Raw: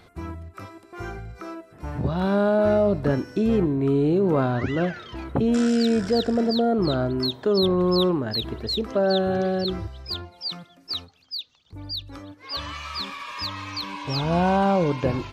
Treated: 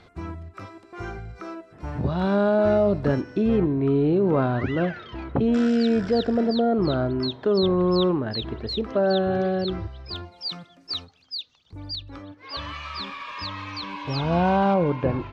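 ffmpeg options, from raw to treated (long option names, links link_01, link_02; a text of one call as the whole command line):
ffmpeg -i in.wav -af "asetnsamples=nb_out_samples=441:pad=0,asendcmd='3.21 lowpass f 3700;10.16 lowpass f 7600;11.95 lowpass f 4000;14.74 lowpass f 2100',lowpass=6400" out.wav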